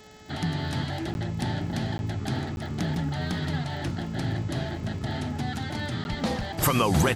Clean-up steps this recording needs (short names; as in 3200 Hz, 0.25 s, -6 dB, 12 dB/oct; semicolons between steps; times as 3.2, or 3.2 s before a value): de-click; de-hum 430.7 Hz, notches 18; interpolate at 1.14/1.98/2.56/6.04, 11 ms